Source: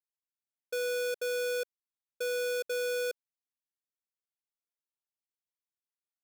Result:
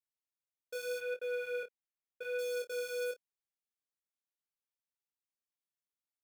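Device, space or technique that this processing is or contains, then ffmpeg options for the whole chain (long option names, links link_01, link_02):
double-tracked vocal: -filter_complex "[0:a]asettb=1/sr,asplit=3[link_01][link_02][link_03];[link_01]atrim=end=0.984[link_04];[link_02]atrim=start=0.98:end=2.39,asetpts=PTS-STARTPTS,afade=type=in:duration=0.004:curve=qsin,afade=type=out:start_time=1.406:duration=0.004:curve=qsin,highshelf=frequency=3600:width_type=q:width=1.5:gain=-12.5[link_05];[link_03]atrim=start=2.386[link_06];[link_04][link_05]acrossfade=duration=0.004:curve1=hsin:curve2=qsin[link_07];[link_07][link_06]acrossfade=duration=0.004:curve1=qsin:curve2=hsin,asplit=2[link_08][link_09];[link_09]adelay=28,volume=-13.5dB[link_10];[link_08][link_10]amix=inputs=2:normalize=0,flanger=delay=20:depth=4.5:speed=0.81,volume=-3.5dB"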